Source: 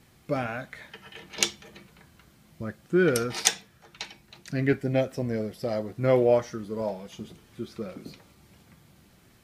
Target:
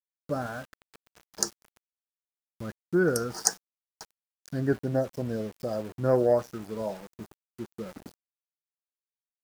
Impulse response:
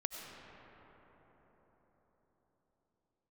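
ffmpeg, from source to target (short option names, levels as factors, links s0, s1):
-af "asuperstop=centerf=2800:order=12:qfactor=0.98,aeval=exprs='val(0)*gte(abs(val(0)),0.01)':c=same,aeval=exprs='0.944*(cos(1*acos(clip(val(0)/0.944,-1,1)))-cos(1*PI/2))+0.0335*(cos(7*acos(clip(val(0)/0.944,-1,1)))-cos(7*PI/2))':c=same"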